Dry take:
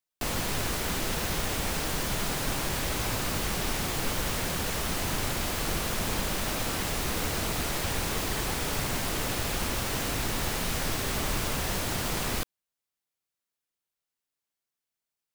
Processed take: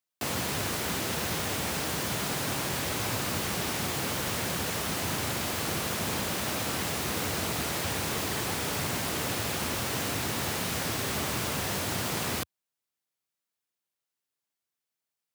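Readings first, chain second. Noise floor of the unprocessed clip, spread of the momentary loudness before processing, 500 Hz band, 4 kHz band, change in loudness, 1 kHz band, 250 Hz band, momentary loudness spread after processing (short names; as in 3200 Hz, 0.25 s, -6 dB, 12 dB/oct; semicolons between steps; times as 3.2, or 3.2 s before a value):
under -85 dBFS, 0 LU, 0.0 dB, 0.0 dB, 0.0 dB, 0.0 dB, 0.0 dB, 0 LU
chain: HPF 80 Hz 24 dB/oct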